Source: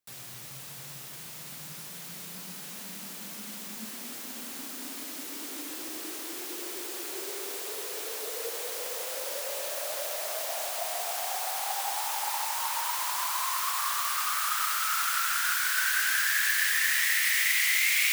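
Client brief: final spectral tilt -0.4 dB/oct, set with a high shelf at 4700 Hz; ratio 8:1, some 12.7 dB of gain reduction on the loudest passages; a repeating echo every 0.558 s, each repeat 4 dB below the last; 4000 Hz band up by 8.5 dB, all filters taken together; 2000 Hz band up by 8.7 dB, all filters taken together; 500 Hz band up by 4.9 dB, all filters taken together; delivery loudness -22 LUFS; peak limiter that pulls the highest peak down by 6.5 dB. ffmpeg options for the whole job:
-af "equalizer=f=500:t=o:g=5.5,equalizer=f=2k:t=o:g=8,equalizer=f=4k:t=o:g=6.5,highshelf=f=4.7k:g=3.5,acompressor=threshold=-27dB:ratio=8,alimiter=limit=-23dB:level=0:latency=1,aecho=1:1:558|1116|1674|2232|2790|3348|3906|4464|5022:0.631|0.398|0.25|0.158|0.0994|0.0626|0.0394|0.0249|0.0157,volume=7dB"

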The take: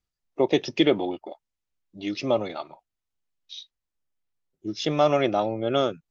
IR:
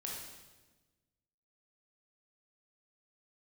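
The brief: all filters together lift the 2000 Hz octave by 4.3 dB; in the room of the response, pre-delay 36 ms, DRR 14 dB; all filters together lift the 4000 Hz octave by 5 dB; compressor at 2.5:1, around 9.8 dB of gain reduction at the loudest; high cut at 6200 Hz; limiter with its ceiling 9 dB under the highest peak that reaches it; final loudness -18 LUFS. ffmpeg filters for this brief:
-filter_complex "[0:a]lowpass=6.2k,equalizer=f=2k:t=o:g=3.5,equalizer=f=4k:t=o:g=5.5,acompressor=threshold=-29dB:ratio=2.5,alimiter=limit=-23dB:level=0:latency=1,asplit=2[a][b];[1:a]atrim=start_sample=2205,adelay=36[c];[b][c]afir=irnorm=-1:irlink=0,volume=-13.5dB[d];[a][d]amix=inputs=2:normalize=0,volume=17dB"

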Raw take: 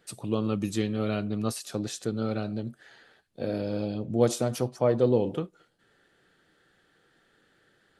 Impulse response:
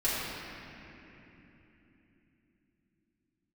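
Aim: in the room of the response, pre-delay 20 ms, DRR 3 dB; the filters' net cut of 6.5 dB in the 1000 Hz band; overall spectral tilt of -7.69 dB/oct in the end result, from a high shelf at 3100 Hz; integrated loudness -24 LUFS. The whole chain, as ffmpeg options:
-filter_complex "[0:a]equalizer=f=1k:t=o:g=-9,highshelf=f=3.1k:g=-6,asplit=2[a][b];[1:a]atrim=start_sample=2205,adelay=20[c];[b][c]afir=irnorm=-1:irlink=0,volume=-13.5dB[d];[a][d]amix=inputs=2:normalize=0,volume=5dB"

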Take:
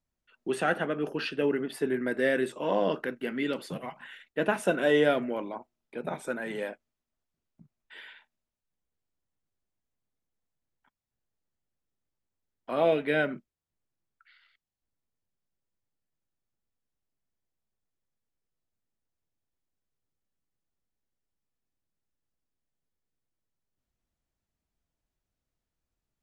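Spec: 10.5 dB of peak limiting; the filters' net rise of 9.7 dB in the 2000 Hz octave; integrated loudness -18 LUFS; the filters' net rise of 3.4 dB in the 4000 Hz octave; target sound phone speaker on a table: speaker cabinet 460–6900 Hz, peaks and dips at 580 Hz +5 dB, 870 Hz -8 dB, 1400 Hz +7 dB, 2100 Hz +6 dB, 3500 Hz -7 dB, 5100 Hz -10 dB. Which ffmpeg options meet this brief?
-af "equalizer=f=2k:t=o:g=5.5,equalizer=f=4k:t=o:g=8,alimiter=limit=-19.5dB:level=0:latency=1,highpass=f=460:w=0.5412,highpass=f=460:w=1.3066,equalizer=f=580:t=q:w=4:g=5,equalizer=f=870:t=q:w=4:g=-8,equalizer=f=1.4k:t=q:w=4:g=7,equalizer=f=2.1k:t=q:w=4:g=6,equalizer=f=3.5k:t=q:w=4:g=-7,equalizer=f=5.1k:t=q:w=4:g=-10,lowpass=f=6.9k:w=0.5412,lowpass=f=6.9k:w=1.3066,volume=12.5dB"

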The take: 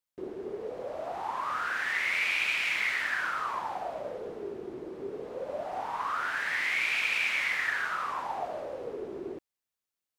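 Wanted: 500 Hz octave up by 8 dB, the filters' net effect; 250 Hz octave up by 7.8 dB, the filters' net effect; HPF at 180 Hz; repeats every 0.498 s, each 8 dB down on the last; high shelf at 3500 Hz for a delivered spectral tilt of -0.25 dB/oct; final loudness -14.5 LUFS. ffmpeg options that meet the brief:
-af "highpass=180,equalizer=f=250:t=o:g=8,equalizer=f=500:t=o:g=8,highshelf=f=3.5k:g=-6,aecho=1:1:498|996|1494|1992|2490:0.398|0.159|0.0637|0.0255|0.0102,volume=15dB"

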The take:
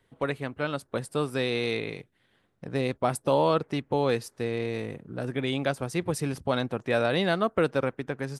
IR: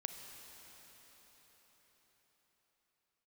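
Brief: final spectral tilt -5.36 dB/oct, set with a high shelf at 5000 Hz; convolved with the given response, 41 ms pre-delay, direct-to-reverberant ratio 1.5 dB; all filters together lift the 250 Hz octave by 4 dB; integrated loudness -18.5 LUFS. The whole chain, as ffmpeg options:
-filter_complex "[0:a]equalizer=f=250:t=o:g=5,highshelf=f=5k:g=-3.5,asplit=2[a][b];[1:a]atrim=start_sample=2205,adelay=41[c];[b][c]afir=irnorm=-1:irlink=0,volume=0dB[d];[a][d]amix=inputs=2:normalize=0,volume=6.5dB"

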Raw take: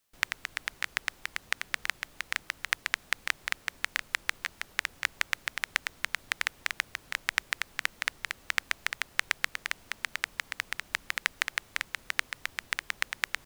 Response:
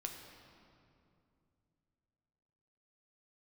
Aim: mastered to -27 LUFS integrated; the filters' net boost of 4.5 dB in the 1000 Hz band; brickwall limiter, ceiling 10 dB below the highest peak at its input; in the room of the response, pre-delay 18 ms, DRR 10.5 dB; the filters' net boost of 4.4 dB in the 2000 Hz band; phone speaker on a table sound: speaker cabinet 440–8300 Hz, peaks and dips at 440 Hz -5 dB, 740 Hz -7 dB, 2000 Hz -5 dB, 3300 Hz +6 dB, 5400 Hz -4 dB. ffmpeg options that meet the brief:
-filter_complex "[0:a]equalizer=f=1k:t=o:g=4.5,equalizer=f=2k:t=o:g=7,alimiter=limit=-9dB:level=0:latency=1,asplit=2[a][b];[1:a]atrim=start_sample=2205,adelay=18[c];[b][c]afir=irnorm=-1:irlink=0,volume=-9dB[d];[a][d]amix=inputs=2:normalize=0,highpass=f=440:w=0.5412,highpass=f=440:w=1.3066,equalizer=f=440:t=q:w=4:g=-5,equalizer=f=740:t=q:w=4:g=-7,equalizer=f=2k:t=q:w=4:g=-5,equalizer=f=3.3k:t=q:w=4:g=6,equalizer=f=5.4k:t=q:w=4:g=-4,lowpass=f=8.3k:w=0.5412,lowpass=f=8.3k:w=1.3066,volume=6.5dB"

